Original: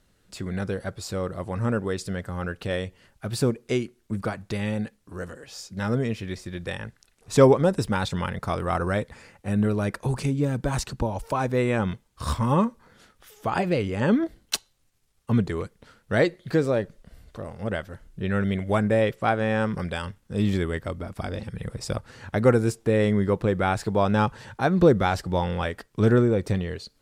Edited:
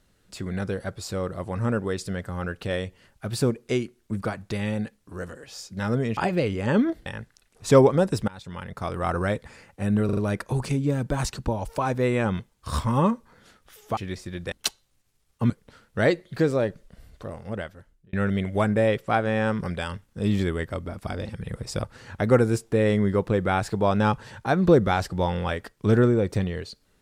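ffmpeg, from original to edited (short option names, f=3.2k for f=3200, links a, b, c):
-filter_complex "[0:a]asplit=11[a][b][c][d][e][f][g][h][i][j][k];[a]atrim=end=6.172[l];[b]atrim=start=13.508:end=14.402[m];[c]atrim=start=6.718:end=7.94,asetpts=PTS-STARTPTS,afade=t=out:st=1.218:d=0.004:c=hsin:silence=0.0707946[n];[d]atrim=start=7.94:end=9.752,asetpts=PTS-STARTPTS,afade=t=in:d=0.86:silence=0.0707946[o];[e]atrim=start=9.708:end=9.752[p];[f]atrim=start=9.708:end=9.752[q];[g]atrim=start=9.708:end=13.512[r];[h]atrim=start=6.168:end=6.722[s];[i]atrim=start=14.398:end=15.382[t];[j]atrim=start=15.638:end=18.27,asetpts=PTS-STARTPTS,afade=t=out:st=1.802:d=0.83[u];[k]atrim=start=18.27,asetpts=PTS-STARTPTS,afade=t=in:d=0.004:c=hsin[v];[l][m]acrossfade=d=0.004:c1=hsin:c2=hsin[w];[n][o]concat=n=2:v=0:a=1[x];[w][x]acrossfade=d=0.004:c1=hsin:c2=hsin[y];[y][p]acrossfade=d=0.004:c1=hsin:c2=hsin[z];[z][q]acrossfade=d=0.004:c1=hsin:c2=hsin[aa];[aa][r]acrossfade=d=0.004:c1=hsin:c2=hsin[ab];[ab][s]acrossfade=d=0.004:c1=hsin:c2=hsin[ac];[ac][t]acrossfade=d=0.004:c1=hsin:c2=hsin[ad];[u][v]concat=n=2:v=0:a=1[ae];[ad][ae]acrossfade=d=0.004:c1=hsin:c2=hsin"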